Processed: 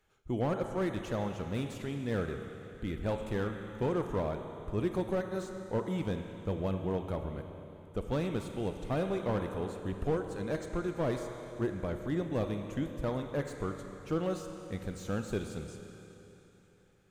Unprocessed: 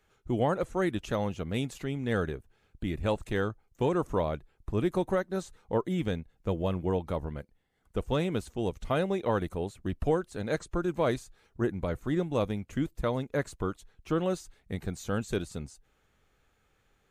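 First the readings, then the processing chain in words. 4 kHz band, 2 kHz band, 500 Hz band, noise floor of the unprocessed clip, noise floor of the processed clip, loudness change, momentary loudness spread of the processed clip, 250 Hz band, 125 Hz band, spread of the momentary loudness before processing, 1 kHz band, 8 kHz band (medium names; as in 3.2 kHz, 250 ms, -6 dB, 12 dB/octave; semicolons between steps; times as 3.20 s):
-5.5 dB, -5.0 dB, -3.5 dB, -71 dBFS, -60 dBFS, -3.5 dB, 9 LU, -3.0 dB, -2.5 dB, 8 LU, -5.0 dB, -4.5 dB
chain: Schroeder reverb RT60 3.4 s, combs from 28 ms, DRR 6.5 dB; slew-rate limiter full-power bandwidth 42 Hz; trim -4 dB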